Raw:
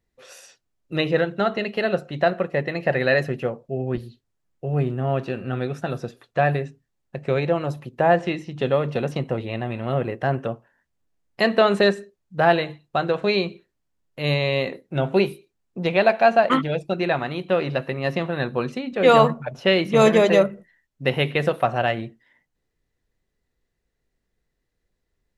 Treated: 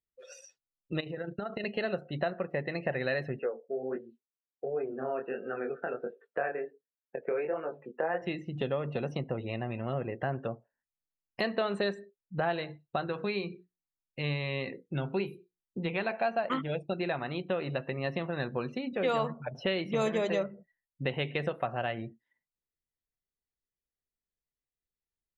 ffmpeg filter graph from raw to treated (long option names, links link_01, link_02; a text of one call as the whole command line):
ffmpeg -i in.wav -filter_complex "[0:a]asettb=1/sr,asplit=3[link_01][link_02][link_03];[link_01]atrim=end=1.004[link_04];[link_02]atrim=start=1:end=1.64,asetpts=PTS-STARTPTS,afade=type=in:duration=0.004:curve=qsin,afade=type=out:start_time=0.636:duration=0.004:curve=qsin,agate=range=-33dB:threshold=-30dB:ratio=3:release=100:detection=peak,acompressor=threshold=-26dB:ratio=16:attack=3.2:release=140:knee=1:detection=peak,tremolo=f=28:d=0.462[link_05];[link_03]atrim=start=1.636[link_06];[link_04][link_05]acrossfade=duration=0.004:curve1=hsin:curve2=qsin[link_07];[link_07][link_06]acrossfade=duration=0.004:curve1=qsin:curve2=hsin,asettb=1/sr,asplit=3[link_08][link_09][link_10];[link_08]atrim=end=3.394[link_11];[link_09]atrim=start=3.39:end=8.22,asetpts=PTS-STARTPTS,afade=type=in:duration=0.004:curve=qsin,afade=type=out:start_time=4.826:duration=0.004:curve=qsin,flanger=delay=17.5:depth=7.8:speed=1.4,highpass=frequency=230:width=0.5412,highpass=frequency=230:width=1.3066,equalizer=frequency=290:width_type=q:width=4:gain=-4,equalizer=frequency=450:width_type=q:width=4:gain=8,equalizer=frequency=1500:width_type=q:width=4:gain=6,lowpass=frequency=2700:width=0.5412,lowpass=frequency=2700:width=1.3066[link_12];[link_10]atrim=start=8.216[link_13];[link_11][link_12]acrossfade=duration=0.004:curve1=hsin:curve2=qsin[link_14];[link_14][link_13]acrossfade=duration=0.004:curve1=qsin:curve2=hsin,asettb=1/sr,asplit=3[link_15][link_16][link_17];[link_15]atrim=end=13.064[link_18];[link_16]atrim=start=13.06:end=16.11,asetpts=PTS-STARTPTS,afade=type=in:duration=0.004:curve=qsin,afade=type=out:start_time=3.046:duration=0.004:curve=qsin,acrossover=split=3400[link_19][link_20];[link_20]acompressor=threshold=-41dB:ratio=4:attack=1:release=60[link_21];[link_19][link_21]amix=inputs=2:normalize=0,equalizer=frequency=620:width=2.6:gain=-9,bandreject=frequency=60:width_type=h:width=6,bandreject=frequency=120:width_type=h:width=6,bandreject=frequency=180:width_type=h:width=6,bandreject=frequency=240:width_type=h:width=6,bandreject=frequency=300:width_type=h:width=6,bandreject=frequency=360:width_type=h:width=6,bandreject=frequency=420:width_type=h:width=6,bandreject=frequency=480:width_type=h:width=6[link_22];[link_17]atrim=start=16.106[link_23];[link_18][link_22]acrossfade=duration=0.004:curve1=hsin:curve2=qsin[link_24];[link_24][link_23]acrossfade=duration=0.004:curve1=qsin:curve2=hsin,highshelf=frequency=5400:gain=2.5,afftdn=noise_reduction=23:noise_floor=-42,acompressor=threshold=-34dB:ratio=2.5" out.wav